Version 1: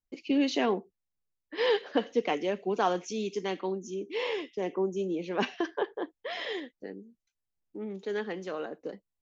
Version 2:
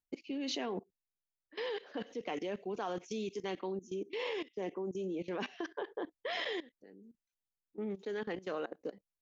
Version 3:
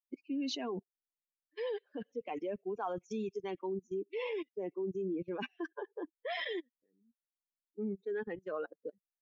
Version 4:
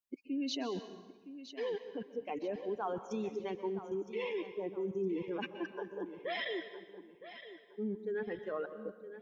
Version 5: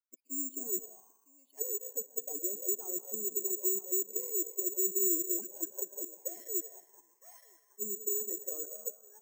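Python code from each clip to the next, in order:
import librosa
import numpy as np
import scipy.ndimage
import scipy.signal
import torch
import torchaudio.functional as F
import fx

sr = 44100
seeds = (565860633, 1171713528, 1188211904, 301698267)

y1 = fx.level_steps(x, sr, step_db=19)
y1 = y1 * librosa.db_to_amplitude(1.0)
y2 = fx.bin_expand(y1, sr, power=2.0)
y2 = fx.high_shelf(y2, sr, hz=4300.0, db=-7.5)
y2 = y2 * librosa.db_to_amplitude(4.5)
y3 = fx.echo_feedback(y2, sr, ms=964, feedback_pct=30, wet_db=-13)
y3 = fx.rev_plate(y3, sr, seeds[0], rt60_s=1.2, hf_ratio=0.9, predelay_ms=115, drr_db=10.5)
y4 = fx.auto_wah(y3, sr, base_hz=360.0, top_hz=1300.0, q=4.8, full_db=-34.5, direction='down')
y4 = (np.kron(scipy.signal.resample_poly(y4, 1, 6), np.eye(6)[0]) * 6)[:len(y4)]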